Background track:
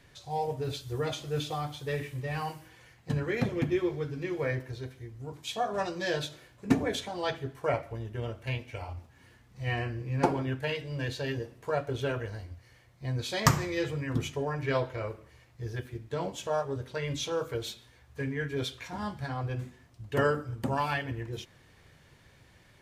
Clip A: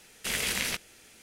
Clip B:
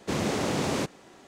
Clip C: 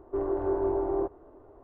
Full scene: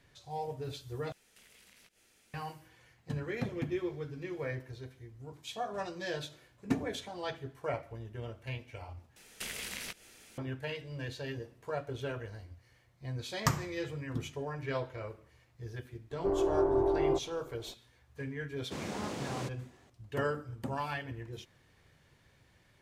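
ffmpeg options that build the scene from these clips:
ffmpeg -i bed.wav -i cue0.wav -i cue1.wav -i cue2.wav -filter_complex "[1:a]asplit=2[link_01][link_02];[0:a]volume=-6.5dB[link_03];[link_01]acompressor=threshold=-47dB:ratio=6:attack=3.2:release=140:knee=1:detection=peak[link_04];[link_02]acompressor=threshold=-38dB:ratio=5:attack=29:release=177:knee=1:detection=rms[link_05];[link_03]asplit=3[link_06][link_07][link_08];[link_06]atrim=end=1.124[link_09];[link_04]atrim=end=1.22,asetpts=PTS-STARTPTS,volume=-12dB[link_10];[link_07]atrim=start=2.336:end=9.164[link_11];[link_05]atrim=end=1.22,asetpts=PTS-STARTPTS,volume=-2dB[link_12];[link_08]atrim=start=10.376[link_13];[3:a]atrim=end=1.63,asetpts=PTS-STARTPTS,volume=-0.5dB,afade=type=in:duration=0.004:curve=hsin,afade=type=out:start_time=1.626:duration=0.004:curve=hsin,adelay=16110[link_14];[2:a]atrim=end=1.27,asetpts=PTS-STARTPTS,volume=-11.5dB,afade=type=in:duration=0.004:curve=hsin,afade=type=out:start_time=1.266:duration=0.004:curve=hsin,adelay=18630[link_15];[link_09][link_10]acrossfade=duration=0.004:curve1=hsin:curve2=hsin[link_16];[link_16][link_11]acrossfade=duration=0.004:curve1=hsin:curve2=hsin[link_17];[link_17][link_12]acrossfade=duration=0.004:curve1=hsin:curve2=hsin[link_18];[link_18][link_13]acrossfade=duration=0.004:curve1=hsin:curve2=hsin[link_19];[link_19][link_14][link_15]amix=inputs=3:normalize=0" out.wav

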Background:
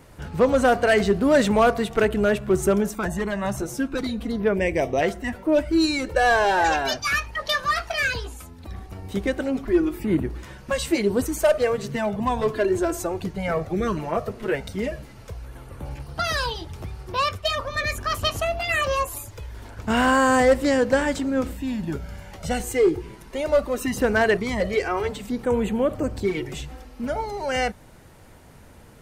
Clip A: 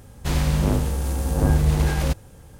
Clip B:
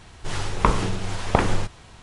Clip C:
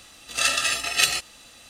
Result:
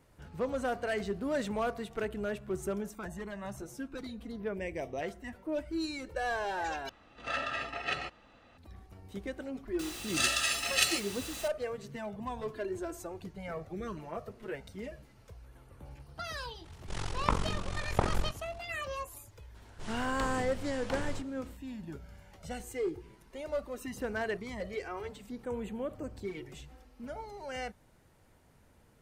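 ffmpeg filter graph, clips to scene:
ffmpeg -i bed.wav -i cue0.wav -i cue1.wav -i cue2.wav -filter_complex "[3:a]asplit=2[link_01][link_02];[2:a]asplit=2[link_03][link_04];[0:a]volume=-15dB[link_05];[link_01]lowpass=1500[link_06];[link_02]aeval=exprs='val(0)+0.5*0.0282*sgn(val(0))':channel_layout=same[link_07];[link_03]tremolo=f=45:d=0.919[link_08];[link_04]aeval=exprs='0.2*(abs(mod(val(0)/0.2+3,4)-2)-1)':channel_layout=same[link_09];[link_05]asplit=2[link_10][link_11];[link_10]atrim=end=6.894[link_12];[link_06]atrim=end=1.69,asetpts=PTS-STARTPTS,volume=-3.5dB[link_13];[link_11]atrim=start=8.576[link_14];[link_07]atrim=end=1.69,asetpts=PTS-STARTPTS,volume=-8dB,afade=type=in:duration=0.004:curve=hsin,afade=type=out:start_time=1.686:duration=0.004:curve=hsin,adelay=9790[link_15];[link_08]atrim=end=2.02,asetpts=PTS-STARTPTS,volume=-6dB,afade=type=in:duration=0.004:curve=hsin,afade=type=out:start_time=2.016:duration=0.004:curve=hsin,adelay=16640[link_16];[link_09]atrim=end=2.02,asetpts=PTS-STARTPTS,volume=-14.5dB,afade=type=in:duration=0.004:curve=hsin,afade=type=out:start_time=2.016:duration=0.004:curve=hsin,adelay=19550[link_17];[link_12][link_13]acrossfade=duration=0.004:curve1=hsin:curve2=hsin[link_18];[link_18][link_14]acrossfade=duration=0.004:curve1=hsin:curve2=hsin[link_19];[link_19][link_15][link_16][link_17]amix=inputs=4:normalize=0" out.wav

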